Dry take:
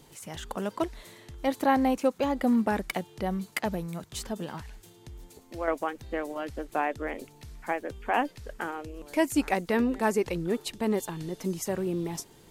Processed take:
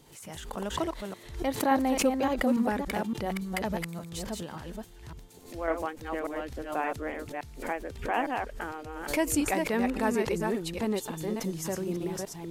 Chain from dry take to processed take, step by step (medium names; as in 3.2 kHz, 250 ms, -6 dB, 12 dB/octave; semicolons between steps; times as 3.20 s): chunks repeated in reverse 285 ms, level -3.5 dB; swell ahead of each attack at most 100 dB/s; trim -3 dB